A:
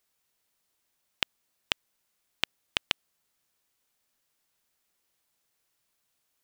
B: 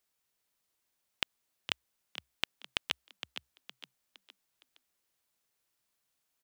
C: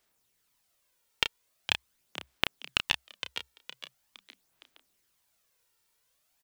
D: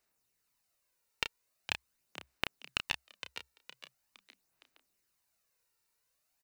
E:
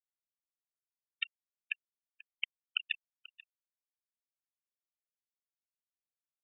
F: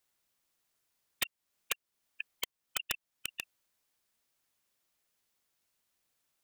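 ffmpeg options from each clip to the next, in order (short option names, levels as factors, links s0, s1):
-filter_complex "[0:a]asplit=5[s0][s1][s2][s3][s4];[s1]adelay=463,afreqshift=63,volume=0.316[s5];[s2]adelay=926,afreqshift=126,volume=0.13[s6];[s3]adelay=1389,afreqshift=189,volume=0.0531[s7];[s4]adelay=1852,afreqshift=252,volume=0.0219[s8];[s0][s5][s6][s7][s8]amix=inputs=5:normalize=0,volume=0.596"
-filter_complex "[0:a]aphaser=in_gain=1:out_gain=1:delay=2.2:decay=0.47:speed=0.43:type=sinusoidal,asplit=2[s0][s1];[s1]adelay=31,volume=0.398[s2];[s0][s2]amix=inputs=2:normalize=0,volume=1.78"
-af "bandreject=f=3300:w=6.6,volume=0.531"
-af "afftfilt=real='re*gte(hypot(re,im),0.0708)':imag='im*gte(hypot(re,im),0.0708)':win_size=1024:overlap=0.75,aecho=1:1:487:0.1,volume=1.33"
-af "acompressor=threshold=0.00355:ratio=2,aeval=exprs='(mod(75*val(0)+1,2)-1)/75':c=same,volume=6.68"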